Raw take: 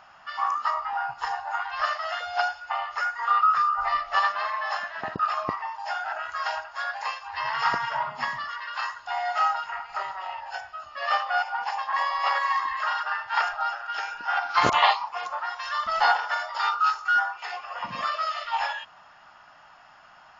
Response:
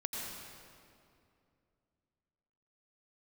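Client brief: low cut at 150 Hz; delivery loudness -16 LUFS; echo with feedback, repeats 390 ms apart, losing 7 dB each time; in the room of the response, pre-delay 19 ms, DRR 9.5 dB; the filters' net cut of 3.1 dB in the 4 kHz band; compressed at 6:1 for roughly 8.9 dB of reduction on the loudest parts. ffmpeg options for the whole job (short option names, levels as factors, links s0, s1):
-filter_complex "[0:a]highpass=150,equalizer=f=4000:t=o:g=-4.5,acompressor=threshold=0.0501:ratio=6,aecho=1:1:390|780|1170|1560|1950:0.447|0.201|0.0905|0.0407|0.0183,asplit=2[s0][s1];[1:a]atrim=start_sample=2205,adelay=19[s2];[s1][s2]afir=irnorm=-1:irlink=0,volume=0.251[s3];[s0][s3]amix=inputs=2:normalize=0,volume=4.73"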